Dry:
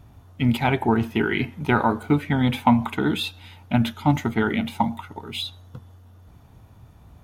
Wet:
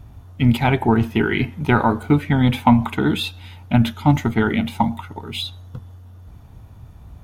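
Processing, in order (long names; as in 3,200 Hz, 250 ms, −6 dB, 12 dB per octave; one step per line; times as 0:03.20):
low-shelf EQ 94 Hz +9.5 dB
level +2.5 dB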